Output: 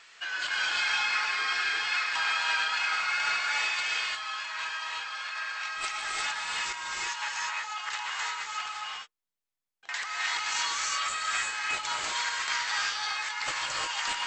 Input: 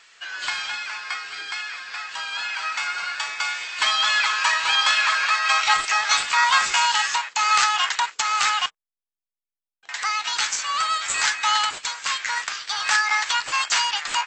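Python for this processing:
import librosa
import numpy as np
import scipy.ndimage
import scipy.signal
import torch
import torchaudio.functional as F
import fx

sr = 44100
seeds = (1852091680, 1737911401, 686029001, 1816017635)

y = fx.high_shelf(x, sr, hz=5300.0, db=-4.5)
y = fx.over_compress(y, sr, threshold_db=-31.0, ratio=-1.0)
y = fx.rev_gated(y, sr, seeds[0], gate_ms=380, shape='rising', drr_db=-3.0)
y = y * 10.0 ** (-6.5 / 20.0)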